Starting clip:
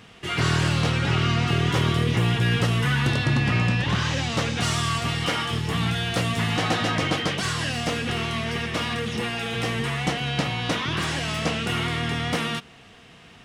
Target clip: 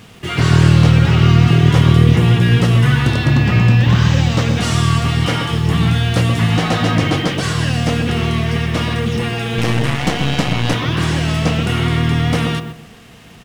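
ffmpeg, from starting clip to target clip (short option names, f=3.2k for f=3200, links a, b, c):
-filter_complex "[0:a]lowshelf=f=350:g=6.5,asplit=2[a][b];[b]adelay=127,lowpass=f=1.1k:p=1,volume=-6dB,asplit=2[c][d];[d]adelay=127,lowpass=f=1.1k:p=1,volume=0.31,asplit=2[e][f];[f]adelay=127,lowpass=f=1.1k:p=1,volume=0.31,asplit=2[g][h];[h]adelay=127,lowpass=f=1.1k:p=1,volume=0.31[i];[a][c][e][g][i]amix=inputs=5:normalize=0,asettb=1/sr,asplit=3[j][k][l];[j]atrim=end=9.584[m];[k]atrim=start=9.58:end=10.74,asetpts=PTS-STARTPTS,afade=t=in:d=0.004:c=qsin,afade=t=out:st=1.156:d=0.004:c=qsin,aeval=exprs='0.376*(cos(1*acos(clip(val(0)/0.376,-1,1)))-cos(1*PI/2))+0.0473*(cos(8*acos(clip(val(0)/0.376,-1,1)))-cos(8*PI/2))':c=same[n];[l]atrim=start=10.736[o];[m][n]acrossfade=d=0.004:c1=hsin:c2=qsin[p];[p][o]acrossfade=d=0.004:c1=qsin:c2=hsin,acrusher=bits=7:mix=0:aa=0.5,asettb=1/sr,asplit=3[q][r][s];[q]atrim=end=3.304[t];[r]atrim=start=3.3:end=4.48,asetpts=PTS-STARTPTS,afade=t=in:d=0.004:c=qsin,afade=t=out:st=1.176:d=0.004:c=qsin,equalizer=f=10k:w=7.8:g=-13[u];[s]atrim=start=4.476[v];[t][u]acrossfade=d=0.004:c1=hsin:c2=qsin[w];[w][v]acrossfade=d=0.004:c1=qsin:c2=hsin,volume=4dB"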